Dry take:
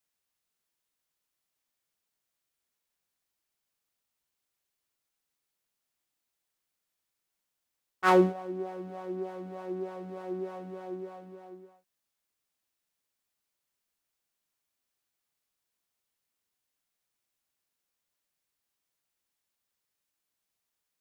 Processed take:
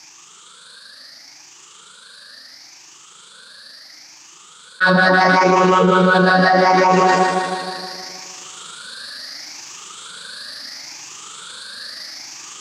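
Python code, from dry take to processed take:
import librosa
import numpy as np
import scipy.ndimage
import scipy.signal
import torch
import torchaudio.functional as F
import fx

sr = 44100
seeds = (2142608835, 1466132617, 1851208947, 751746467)

p1 = fx.spec_ripple(x, sr, per_octave=0.77, drift_hz=0.44, depth_db=18)
p2 = fx.peak_eq(p1, sr, hz=360.0, db=-4.0, octaves=0.69)
p3 = fx.rider(p2, sr, range_db=4, speed_s=0.5)
p4 = fx.cabinet(p3, sr, low_hz=210.0, low_slope=12, high_hz=5700.0, hz=(230.0, 410.0, 700.0, 1200.0, 2000.0, 3600.0), db=(-4, -5, -10, 5, -8, 7))
p5 = fx.formant_shift(p4, sr, semitones=4)
p6 = p5 + fx.echo_alternate(p5, sr, ms=131, hz=1100.0, feedback_pct=78, wet_db=-10.5, dry=0)
p7 = fx.stretch_grains(p6, sr, factor=0.6, grain_ms=78.0)
p8 = fx.env_flatten(p7, sr, amount_pct=100)
y = p8 * librosa.db_to_amplitude(8.0)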